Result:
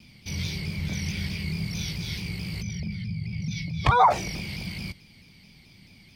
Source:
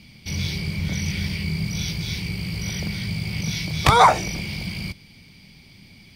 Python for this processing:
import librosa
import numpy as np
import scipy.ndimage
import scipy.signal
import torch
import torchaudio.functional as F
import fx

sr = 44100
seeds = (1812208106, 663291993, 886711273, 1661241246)

y = fx.spec_expand(x, sr, power=1.6, at=(2.61, 4.1), fade=0.02)
y = fx.vibrato_shape(y, sr, shape='saw_down', rate_hz=4.6, depth_cents=100.0)
y = y * librosa.db_to_amplitude(-4.5)